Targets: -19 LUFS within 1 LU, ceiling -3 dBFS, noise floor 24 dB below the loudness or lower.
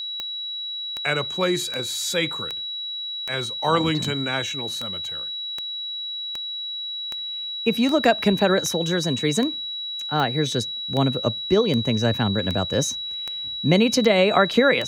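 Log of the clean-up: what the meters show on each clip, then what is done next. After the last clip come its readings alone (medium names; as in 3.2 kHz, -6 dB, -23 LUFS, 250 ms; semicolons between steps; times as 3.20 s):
clicks found 20; steady tone 3.9 kHz; tone level -28 dBFS; loudness -23.0 LUFS; peak level -4.0 dBFS; loudness target -19.0 LUFS
-> de-click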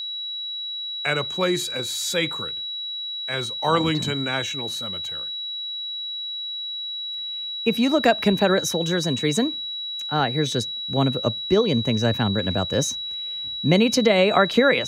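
clicks found 0; steady tone 3.9 kHz; tone level -28 dBFS
-> band-stop 3.9 kHz, Q 30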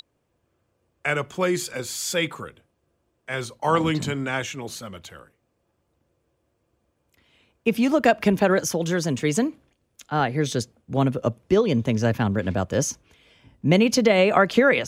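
steady tone not found; loudness -23.0 LUFS; peak level -4.5 dBFS; loudness target -19.0 LUFS
-> trim +4 dB; peak limiter -3 dBFS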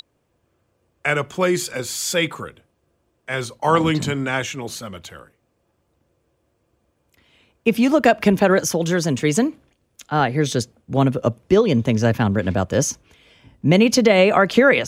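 loudness -19.0 LUFS; peak level -3.0 dBFS; noise floor -69 dBFS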